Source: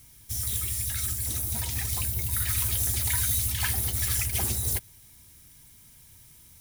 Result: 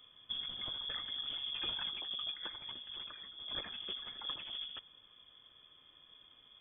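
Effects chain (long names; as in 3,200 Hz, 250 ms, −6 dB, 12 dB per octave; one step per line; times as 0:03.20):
compressor whose output falls as the input rises −31 dBFS, ratio −0.5
voice inversion scrambler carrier 3,400 Hz
level −7 dB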